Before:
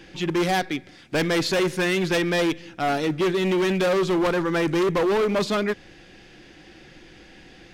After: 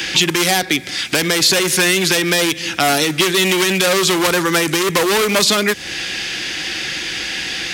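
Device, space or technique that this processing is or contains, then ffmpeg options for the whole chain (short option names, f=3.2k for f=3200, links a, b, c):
mastering chain: -filter_complex "[0:a]highpass=45,equalizer=f=630:t=o:w=0.77:g=-2,acrossover=split=160|790|7200[a][b][c][d];[a]acompressor=threshold=-43dB:ratio=4[e];[b]acompressor=threshold=-30dB:ratio=4[f];[c]acompressor=threshold=-42dB:ratio=4[g];[d]acompressor=threshold=-49dB:ratio=4[h];[e][f][g][h]amix=inputs=4:normalize=0,acompressor=threshold=-34dB:ratio=1.5,tiltshelf=f=1.2k:g=-10,asoftclip=type=hard:threshold=-21.5dB,alimiter=level_in=23.5dB:limit=-1dB:release=50:level=0:latency=1,volume=-1dB"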